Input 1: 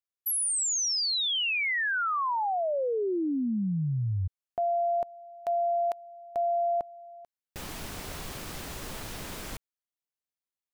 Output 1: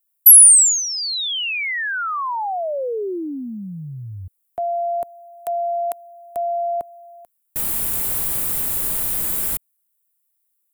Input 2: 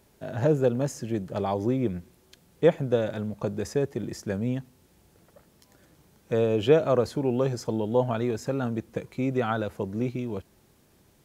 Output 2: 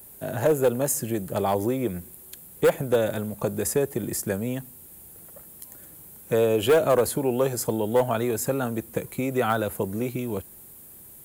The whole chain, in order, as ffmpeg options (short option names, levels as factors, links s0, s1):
-filter_complex "[0:a]acrossover=split=360|810|4200[s0][s1][s2][s3];[s0]acompressor=threshold=0.0112:ratio=6:attack=60:release=70:detection=peak[s4];[s4][s1][s2][s3]amix=inputs=4:normalize=0,volume=7.94,asoftclip=hard,volume=0.126,aexciter=amount=6.8:drive=7.2:freq=8000,volume=1.68"